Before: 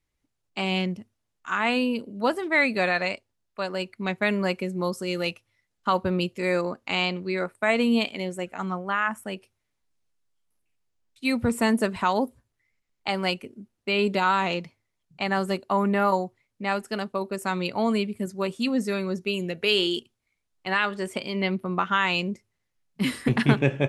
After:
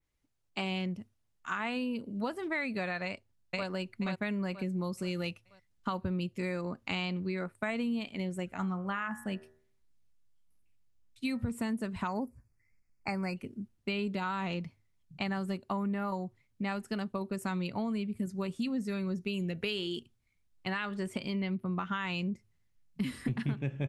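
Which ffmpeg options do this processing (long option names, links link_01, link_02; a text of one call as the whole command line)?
ffmpeg -i in.wav -filter_complex "[0:a]asplit=2[link_01][link_02];[link_02]afade=type=in:start_time=3.05:duration=0.01,afade=type=out:start_time=3.67:duration=0.01,aecho=0:1:480|960|1440|1920|2400:0.841395|0.294488|0.103071|0.0360748|0.0126262[link_03];[link_01][link_03]amix=inputs=2:normalize=0,asettb=1/sr,asplit=3[link_04][link_05][link_06];[link_04]atrim=end=8.534[link_07];[link_05]atrim=start=8.53:end=11.46,asetpts=PTS-STARTPTS,afade=type=in:duration=0.004:curve=qsin,afade=type=out:start_time=2.926:duration=0.004:curve=qsin,bandreject=frequency=77.19:width_type=h:width=4,bandreject=frequency=154.38:width_type=h:width=4,bandreject=frequency=231.57:width_type=h:width=4,bandreject=frequency=308.76:width_type=h:width=4,bandreject=frequency=385.95:width_type=h:width=4,bandreject=frequency=463.14:width_type=h:width=4,bandreject=frequency=540.33:width_type=h:width=4,bandreject=frequency=617.52:width_type=h:width=4,bandreject=frequency=694.71:width_type=h:width=4,bandreject=frequency=771.9:width_type=h:width=4,bandreject=frequency=849.09:width_type=h:width=4,bandreject=frequency=926.28:width_type=h:width=4,bandreject=frequency=1003.47:width_type=h:width=4,bandreject=frequency=1080.66:width_type=h:width=4,bandreject=frequency=1157.85:width_type=h:width=4,bandreject=frequency=1235.04:width_type=h:width=4,bandreject=frequency=1312.23:width_type=h:width=4,bandreject=frequency=1389.42:width_type=h:width=4,bandreject=frequency=1466.61:width_type=h:width=4,bandreject=frequency=1543.8:width_type=h:width=4,bandreject=frequency=1620.99:width_type=h:width=4,bandreject=frequency=1698.18:width_type=h:width=4,bandreject=frequency=1775.37:width_type=h:width=4,bandreject=frequency=1852.56:width_type=h:width=4,bandreject=frequency=1929.75:width_type=h:width=4[link_08];[link_06]atrim=start=11.456[link_09];[link_07][link_08]acrossfade=duration=0.004:curve1=hsin:curve2=qsin[link_10];[link_10][link_09]acrossfade=duration=0.004:curve1=qsin:curve2=hsin,asettb=1/sr,asplit=3[link_11][link_12][link_13];[link_11]atrim=end=12.074[link_14];[link_12]atrim=start=12.07:end=13.37,asetpts=PTS-STARTPTS,afade=type=in:duration=0.004:curve=qsin,afade=type=out:start_time=1.296:duration=0.004:curve=qsin,asuperstop=centerf=3400:order=12:qfactor=1.9[link_15];[link_13]atrim=start=13.366[link_16];[link_14][link_15]acrossfade=duration=0.004:curve1=hsin:curve2=qsin[link_17];[link_17][link_16]acrossfade=duration=0.004:curve1=qsin:curve2=hsin,asubboost=boost=3:cutoff=240,acompressor=threshold=-28dB:ratio=6,adynamicequalizer=threshold=0.00562:dfrequency=2700:dqfactor=0.7:tfrequency=2700:tqfactor=0.7:attack=5:release=100:ratio=0.375:range=2:mode=cutabove:tftype=highshelf,volume=-3dB" out.wav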